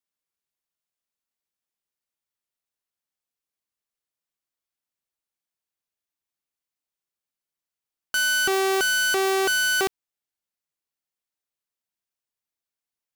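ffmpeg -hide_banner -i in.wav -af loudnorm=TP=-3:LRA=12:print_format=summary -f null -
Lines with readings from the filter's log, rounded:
Input Integrated:    -21.3 LUFS
Input True Peak:     -15.0 dBTP
Input LRA:             3.0 LU
Input Threshold:     -31.3 LUFS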